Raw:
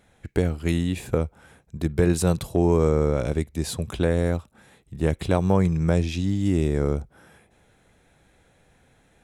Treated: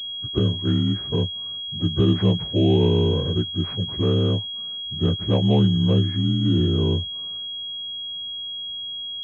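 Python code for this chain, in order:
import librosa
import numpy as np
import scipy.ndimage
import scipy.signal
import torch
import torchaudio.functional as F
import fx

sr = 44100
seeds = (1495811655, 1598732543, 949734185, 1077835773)

y = fx.partial_stretch(x, sr, pct=83)
y = fx.low_shelf(y, sr, hz=320.0, db=7.0)
y = fx.pwm(y, sr, carrier_hz=3300.0)
y = F.gain(torch.from_numpy(y), -2.0).numpy()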